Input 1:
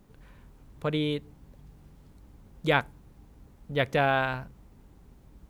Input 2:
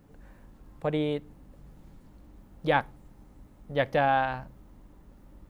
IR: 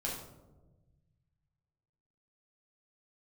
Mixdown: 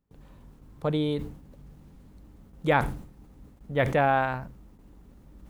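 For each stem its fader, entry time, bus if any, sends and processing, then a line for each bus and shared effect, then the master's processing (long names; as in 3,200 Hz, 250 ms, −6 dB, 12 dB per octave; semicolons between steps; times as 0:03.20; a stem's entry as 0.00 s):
−3.0 dB, 0.00 s, no send, no processing
−4.5 dB, 0.00 s, no send, mains hum 50 Hz, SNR 24 dB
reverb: not used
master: noise gate with hold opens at −44 dBFS; level that may fall only so fast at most 90 dB per second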